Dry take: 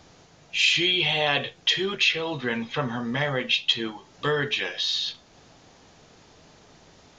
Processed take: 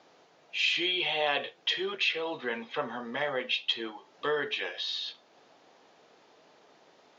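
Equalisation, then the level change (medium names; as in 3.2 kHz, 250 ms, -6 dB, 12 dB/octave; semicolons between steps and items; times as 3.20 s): band-pass 440–3600 Hz; peaking EQ 2.1 kHz -5.5 dB 2.9 oct; 0.0 dB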